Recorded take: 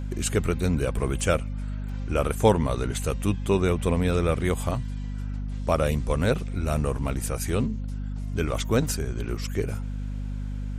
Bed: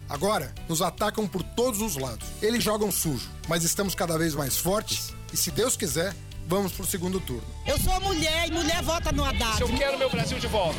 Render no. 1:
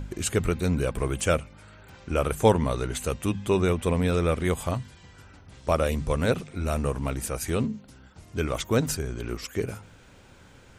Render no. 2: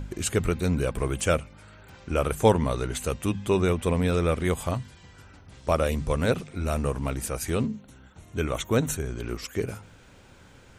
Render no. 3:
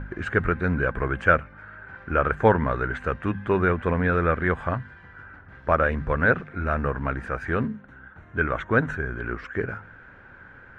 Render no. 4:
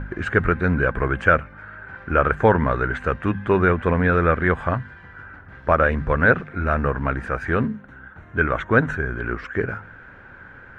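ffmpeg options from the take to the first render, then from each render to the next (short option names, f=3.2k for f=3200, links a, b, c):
-af "bandreject=f=50:t=h:w=4,bandreject=f=100:t=h:w=4,bandreject=f=150:t=h:w=4,bandreject=f=200:t=h:w=4,bandreject=f=250:t=h:w=4"
-filter_complex "[0:a]asettb=1/sr,asplit=3[a][b][c];[a]atrim=end=7.754[d];[b]atrim=start=7.75:end=9.06,asetpts=PTS-STARTPTS,afade=t=in:d=0.004:c=qsin,afade=t=out:st=1.306:d=0.004:c=qsin,asuperstop=centerf=4900:order=4:qfactor=3.9[e];[c]atrim=start=9.056[f];[d][e]acrossfade=d=0.004:c1=hsin:c2=qsin[g];[g][f]acrossfade=d=0.004:c1=qsin:c2=hsin"
-af "acrusher=bits=8:mode=log:mix=0:aa=0.000001,lowpass=f=1.6k:t=q:w=6"
-af "volume=4dB,alimiter=limit=-3dB:level=0:latency=1"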